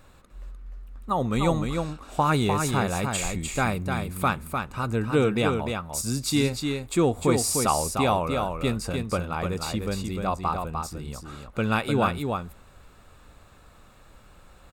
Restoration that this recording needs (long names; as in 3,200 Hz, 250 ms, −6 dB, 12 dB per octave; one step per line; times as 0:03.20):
repair the gap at 0:07.53, 1.4 ms
echo removal 301 ms −5 dB